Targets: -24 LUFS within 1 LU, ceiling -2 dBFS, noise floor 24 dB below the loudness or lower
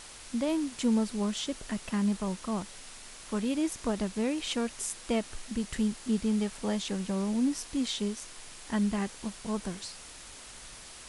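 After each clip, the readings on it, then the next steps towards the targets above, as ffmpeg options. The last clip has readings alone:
noise floor -48 dBFS; noise floor target -56 dBFS; loudness -32.0 LUFS; peak level -17.5 dBFS; loudness target -24.0 LUFS
-> -af "afftdn=nr=8:nf=-48"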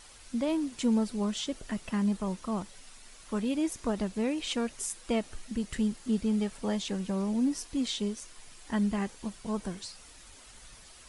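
noise floor -53 dBFS; noise floor target -56 dBFS
-> -af "afftdn=nr=6:nf=-53"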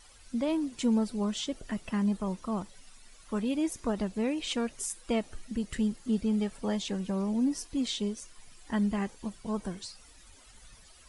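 noise floor -56 dBFS; loudness -32.0 LUFS; peak level -17.5 dBFS; loudness target -24.0 LUFS
-> -af "volume=2.51"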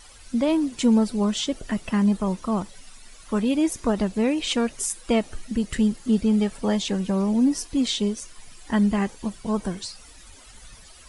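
loudness -24.0 LUFS; peak level -9.5 dBFS; noise floor -48 dBFS

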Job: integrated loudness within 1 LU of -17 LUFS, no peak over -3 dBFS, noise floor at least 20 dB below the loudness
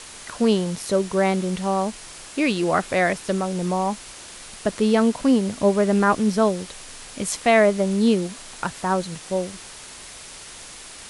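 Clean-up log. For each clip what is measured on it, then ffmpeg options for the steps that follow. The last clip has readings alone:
noise floor -41 dBFS; noise floor target -42 dBFS; loudness -22.0 LUFS; peak level -5.0 dBFS; loudness target -17.0 LUFS
-> -af "afftdn=nr=6:nf=-41"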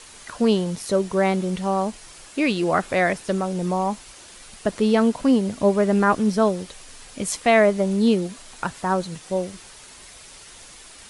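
noise floor -45 dBFS; loudness -22.0 LUFS; peak level -5.0 dBFS; loudness target -17.0 LUFS
-> -af "volume=1.78,alimiter=limit=0.708:level=0:latency=1"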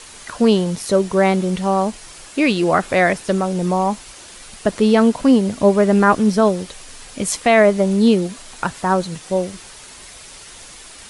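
loudness -17.0 LUFS; peak level -3.0 dBFS; noise floor -40 dBFS

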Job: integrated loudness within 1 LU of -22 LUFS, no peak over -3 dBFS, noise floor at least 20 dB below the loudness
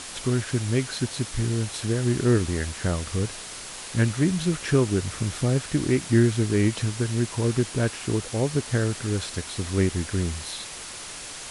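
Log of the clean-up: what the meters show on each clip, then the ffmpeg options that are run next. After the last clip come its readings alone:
noise floor -38 dBFS; noise floor target -46 dBFS; loudness -25.5 LUFS; peak level -8.0 dBFS; loudness target -22.0 LUFS
-> -af "afftdn=nr=8:nf=-38"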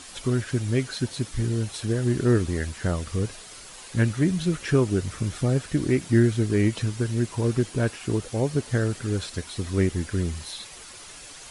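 noise floor -44 dBFS; noise floor target -46 dBFS
-> -af "afftdn=nr=6:nf=-44"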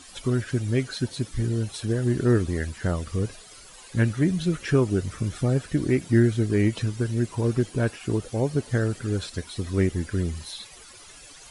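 noise floor -47 dBFS; loudness -25.5 LUFS; peak level -8.5 dBFS; loudness target -22.0 LUFS
-> -af "volume=1.5"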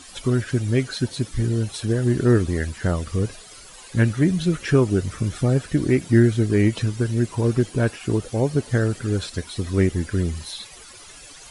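loudness -22.0 LUFS; peak level -5.0 dBFS; noise floor -44 dBFS

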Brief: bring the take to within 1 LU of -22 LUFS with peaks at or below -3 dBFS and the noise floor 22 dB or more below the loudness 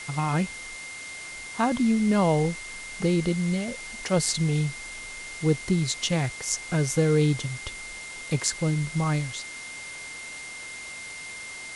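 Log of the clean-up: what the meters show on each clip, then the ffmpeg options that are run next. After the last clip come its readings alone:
steady tone 2.1 kHz; tone level -38 dBFS; noise floor -39 dBFS; noise floor target -50 dBFS; loudness -27.5 LUFS; peak level -5.5 dBFS; loudness target -22.0 LUFS
-> -af "bandreject=f=2100:w=30"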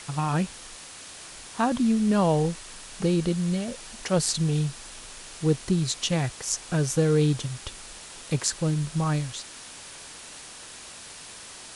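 steady tone not found; noise floor -44 dBFS; noise floor target -48 dBFS
-> -af "afftdn=nr=6:nf=-44"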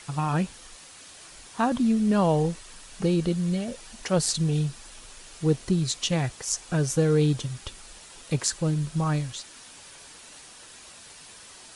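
noise floor -48 dBFS; loudness -26.0 LUFS; peak level -5.5 dBFS; loudness target -22.0 LUFS
-> -af "volume=1.58,alimiter=limit=0.708:level=0:latency=1"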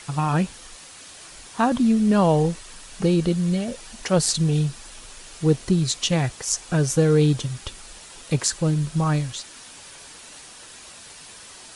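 loudness -22.0 LUFS; peak level -3.0 dBFS; noise floor -44 dBFS

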